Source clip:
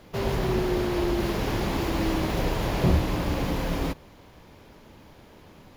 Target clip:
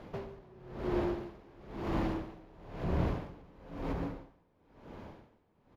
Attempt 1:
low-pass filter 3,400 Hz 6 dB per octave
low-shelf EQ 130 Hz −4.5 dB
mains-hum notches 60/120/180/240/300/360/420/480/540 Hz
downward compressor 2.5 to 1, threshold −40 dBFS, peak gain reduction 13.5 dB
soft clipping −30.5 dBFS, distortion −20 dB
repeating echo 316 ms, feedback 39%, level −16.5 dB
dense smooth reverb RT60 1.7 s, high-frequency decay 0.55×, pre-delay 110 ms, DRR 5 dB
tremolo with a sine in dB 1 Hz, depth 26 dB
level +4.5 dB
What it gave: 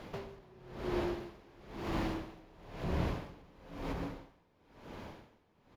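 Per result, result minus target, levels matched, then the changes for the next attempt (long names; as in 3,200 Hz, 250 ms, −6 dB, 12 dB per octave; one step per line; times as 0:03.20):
4,000 Hz band +6.5 dB; downward compressor: peak gain reduction +4 dB
change: low-pass filter 1,100 Hz 6 dB per octave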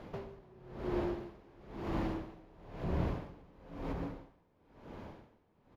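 downward compressor: peak gain reduction +4 dB
change: downward compressor 2.5 to 1, threshold −33.5 dBFS, peak gain reduction 9 dB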